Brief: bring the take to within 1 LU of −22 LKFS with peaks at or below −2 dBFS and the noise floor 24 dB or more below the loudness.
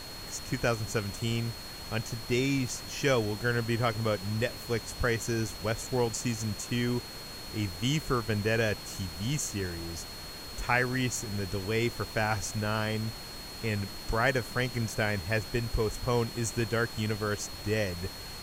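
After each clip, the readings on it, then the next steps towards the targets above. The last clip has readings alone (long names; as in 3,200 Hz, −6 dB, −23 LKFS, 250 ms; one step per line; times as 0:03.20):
interfering tone 4,300 Hz; level of the tone −44 dBFS; background noise floor −43 dBFS; target noise floor −56 dBFS; integrated loudness −31.5 LKFS; sample peak −12.0 dBFS; target loudness −22.0 LKFS
→ notch filter 4,300 Hz, Q 30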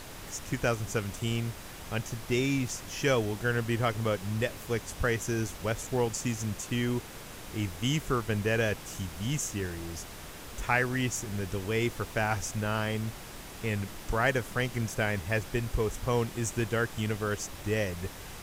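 interfering tone none found; background noise floor −44 dBFS; target noise floor −56 dBFS
→ noise reduction from a noise print 12 dB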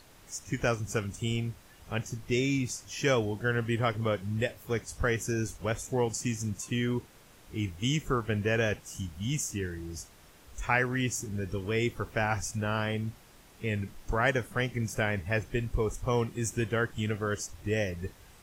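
background noise floor −56 dBFS; integrated loudness −31.5 LKFS; sample peak −12.0 dBFS; target loudness −22.0 LKFS
→ level +9.5 dB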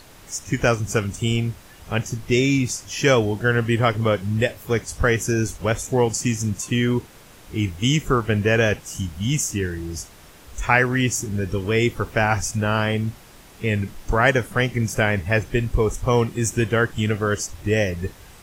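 integrated loudness −22.0 LKFS; sample peak −2.5 dBFS; background noise floor −46 dBFS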